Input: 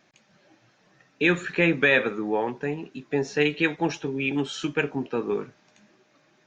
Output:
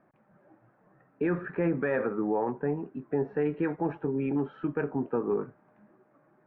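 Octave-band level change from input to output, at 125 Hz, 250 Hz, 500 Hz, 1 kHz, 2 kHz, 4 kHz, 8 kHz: −2.5 dB, −2.5 dB, −3.0 dB, −3.5 dB, −15.0 dB, below −30 dB, can't be measured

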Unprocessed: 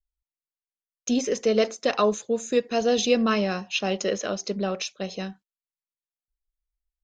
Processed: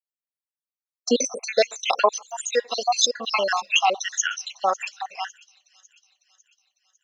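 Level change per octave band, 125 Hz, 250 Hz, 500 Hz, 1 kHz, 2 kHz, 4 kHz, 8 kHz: can't be measured, −8.5 dB, −1.5 dB, +7.5 dB, +5.5 dB, +6.0 dB, +8.0 dB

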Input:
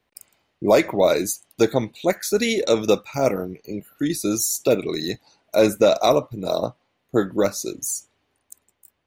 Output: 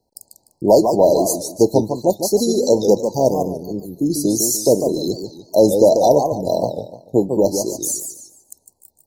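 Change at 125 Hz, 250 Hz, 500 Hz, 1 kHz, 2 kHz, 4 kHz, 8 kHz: +5.0 dB, +5.0 dB, +5.0 dB, +4.5 dB, below −40 dB, −0.5 dB, +5.0 dB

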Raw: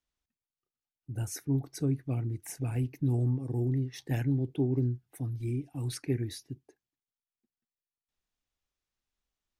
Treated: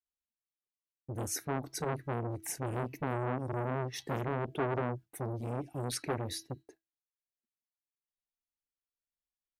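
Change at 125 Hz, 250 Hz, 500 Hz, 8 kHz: −8.0, −6.5, +2.5, +3.5 decibels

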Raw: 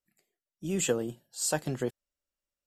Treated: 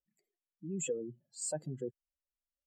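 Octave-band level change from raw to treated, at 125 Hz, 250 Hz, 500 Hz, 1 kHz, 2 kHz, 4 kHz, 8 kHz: −7.5, −8.5, −7.0, −14.5, −14.0, −14.5, −7.5 decibels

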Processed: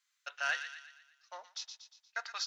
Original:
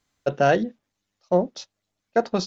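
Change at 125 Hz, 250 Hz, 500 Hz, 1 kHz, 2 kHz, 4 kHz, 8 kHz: below −40 dB, below −40 dB, −31.5 dB, −17.0 dB, −4.5 dB, −3.5 dB, can't be measured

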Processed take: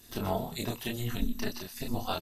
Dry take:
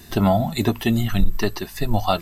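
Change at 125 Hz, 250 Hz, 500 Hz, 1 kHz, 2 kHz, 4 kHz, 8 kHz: −14.5, −14.0, −12.5, −12.5, −11.0, −8.5, −6.0 decibels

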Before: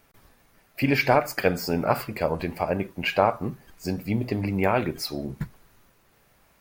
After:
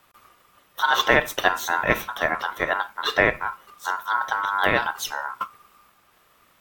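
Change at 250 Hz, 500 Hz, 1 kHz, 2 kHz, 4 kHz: −7.5, −1.5, +4.5, +8.5, +7.0 decibels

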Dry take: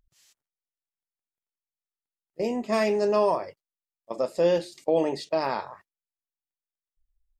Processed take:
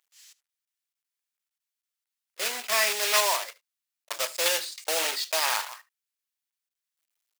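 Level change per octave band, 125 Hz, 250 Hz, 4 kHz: below −25 dB, −21.0 dB, +14.0 dB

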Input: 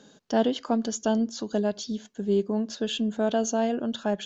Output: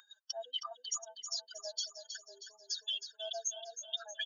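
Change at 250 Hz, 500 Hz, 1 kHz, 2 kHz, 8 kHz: below −40 dB, −21.5 dB, −17.5 dB, −10.5 dB, can't be measured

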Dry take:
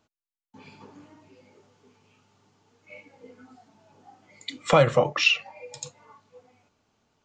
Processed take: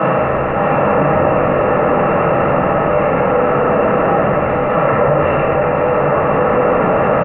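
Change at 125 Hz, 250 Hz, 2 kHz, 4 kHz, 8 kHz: +15.5 dB, +21.0 dB, +10.5 dB, can't be measured, below −35 dB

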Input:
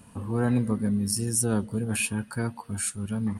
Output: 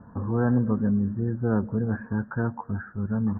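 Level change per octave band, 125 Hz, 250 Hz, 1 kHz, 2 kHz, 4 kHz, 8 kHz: +2.5 dB, +2.5 dB, +2.5 dB, −2.0 dB, below −40 dB, below −40 dB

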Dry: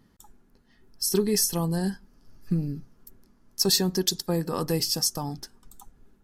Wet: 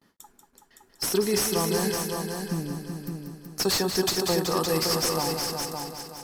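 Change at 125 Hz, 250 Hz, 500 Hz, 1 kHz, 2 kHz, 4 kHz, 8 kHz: −2.5, −0.5, +3.5, +7.0, +8.5, 0.0, −0.5 decibels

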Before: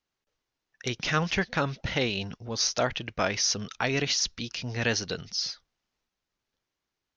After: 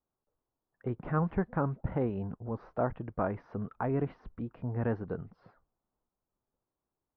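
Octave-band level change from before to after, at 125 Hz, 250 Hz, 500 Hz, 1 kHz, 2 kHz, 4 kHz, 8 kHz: 0.0 dB, −0.5 dB, −3.0 dB, −4.0 dB, −16.5 dB, below −40 dB, below −40 dB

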